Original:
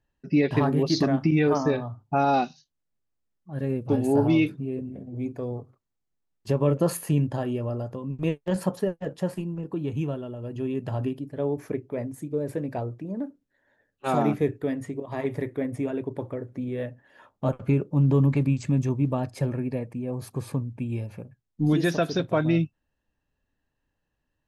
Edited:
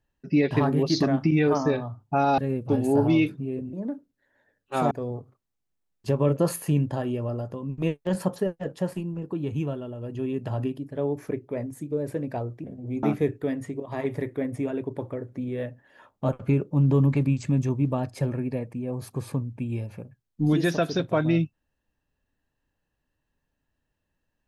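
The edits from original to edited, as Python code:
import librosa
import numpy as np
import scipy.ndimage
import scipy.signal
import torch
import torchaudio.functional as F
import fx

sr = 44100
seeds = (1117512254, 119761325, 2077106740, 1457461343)

y = fx.edit(x, sr, fx.cut(start_s=2.38, length_s=1.2),
    fx.swap(start_s=4.93, length_s=0.39, other_s=13.05, other_length_s=1.18), tone=tone)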